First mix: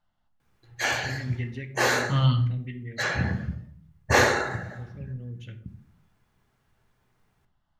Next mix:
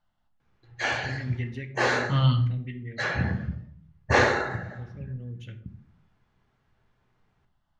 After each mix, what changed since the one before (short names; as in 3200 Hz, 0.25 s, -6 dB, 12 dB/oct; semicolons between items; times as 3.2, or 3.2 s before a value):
background: add air absorption 120 m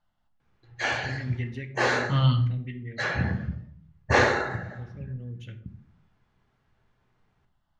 none